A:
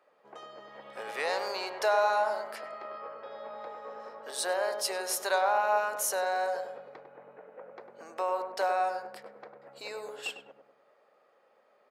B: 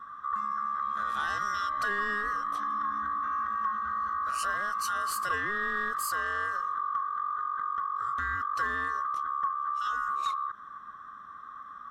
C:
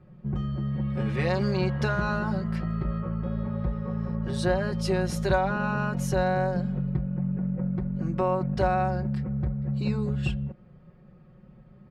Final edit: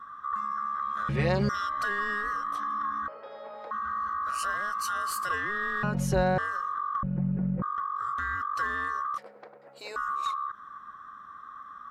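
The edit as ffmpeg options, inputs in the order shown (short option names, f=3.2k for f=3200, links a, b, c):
-filter_complex "[2:a]asplit=3[a][b][c];[0:a]asplit=2[d][e];[1:a]asplit=6[f][g][h][i][j][k];[f]atrim=end=1.092[l];[a]atrim=start=1.088:end=1.492[m];[g]atrim=start=1.488:end=3.082[n];[d]atrim=start=3.078:end=3.712[o];[h]atrim=start=3.708:end=5.832[p];[b]atrim=start=5.828:end=6.382[q];[i]atrim=start=6.378:end=7.032[r];[c]atrim=start=7.028:end=7.622[s];[j]atrim=start=7.618:end=9.182[t];[e]atrim=start=9.178:end=9.962[u];[k]atrim=start=9.958[v];[l][m]acrossfade=d=0.004:c1=hsin:c2=hsin[w];[w][n]acrossfade=d=0.004:c1=hsin:c2=hsin[x];[x][o]acrossfade=d=0.004:c1=hsin:c2=hsin[y];[y][p]acrossfade=d=0.004:c1=hsin:c2=hsin[z];[z][q]acrossfade=d=0.004:c1=hsin:c2=hsin[aa];[aa][r]acrossfade=d=0.004:c1=hsin:c2=hsin[ab];[ab][s]acrossfade=d=0.004:c1=hsin:c2=hsin[ac];[ac][t]acrossfade=d=0.004:c1=hsin:c2=hsin[ad];[ad][u]acrossfade=d=0.004:c1=hsin:c2=hsin[ae];[ae][v]acrossfade=d=0.004:c1=hsin:c2=hsin"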